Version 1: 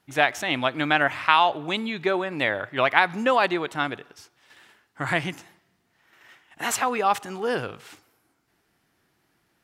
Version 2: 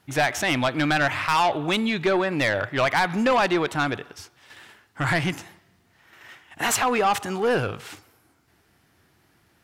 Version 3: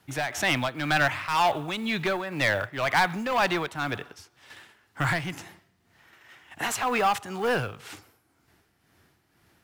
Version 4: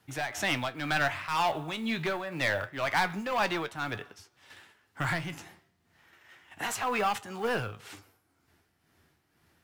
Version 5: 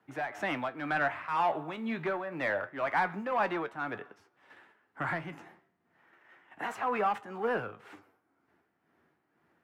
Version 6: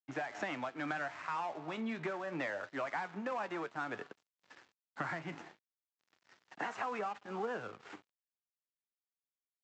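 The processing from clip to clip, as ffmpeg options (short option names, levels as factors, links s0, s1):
-filter_complex "[0:a]equalizer=f=84:w=1.5:g=8.5,asplit=2[s0][s1];[s1]alimiter=limit=0.237:level=0:latency=1:release=117,volume=1[s2];[s0][s2]amix=inputs=2:normalize=0,asoftclip=type=tanh:threshold=0.178"
-filter_complex "[0:a]tremolo=f=2:d=0.6,acrossover=split=240|480|3000[s0][s1][s2][s3];[s1]acompressor=threshold=0.00794:ratio=6[s4];[s0][s4][s2][s3]amix=inputs=4:normalize=0,acrusher=bits=7:mode=log:mix=0:aa=0.000001"
-af "flanger=delay=8.8:depth=4.4:regen=66:speed=0.27:shape=triangular"
-filter_complex "[0:a]acrossover=split=170 2100:gain=0.112 1 0.112[s0][s1][s2];[s0][s1][s2]amix=inputs=3:normalize=0"
-af "acompressor=threshold=0.0126:ratio=12,aresample=16000,aeval=exprs='sgn(val(0))*max(abs(val(0))-0.00133,0)':c=same,aresample=44100,highpass=110,volume=1.58"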